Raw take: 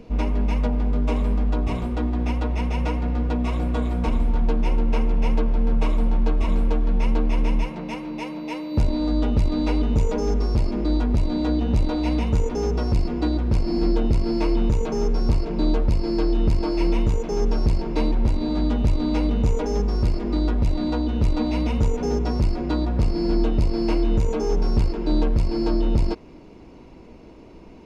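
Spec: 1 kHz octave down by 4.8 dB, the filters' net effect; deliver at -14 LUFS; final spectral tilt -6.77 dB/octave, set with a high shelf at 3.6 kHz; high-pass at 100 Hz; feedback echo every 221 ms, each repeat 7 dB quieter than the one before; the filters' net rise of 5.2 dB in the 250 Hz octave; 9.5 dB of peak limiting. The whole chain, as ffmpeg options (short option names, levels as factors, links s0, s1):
-af "highpass=100,equalizer=f=250:t=o:g=7,equalizer=f=1000:t=o:g=-7,highshelf=f=3600:g=5.5,alimiter=limit=0.126:level=0:latency=1,aecho=1:1:221|442|663|884|1105:0.447|0.201|0.0905|0.0407|0.0183,volume=3.98"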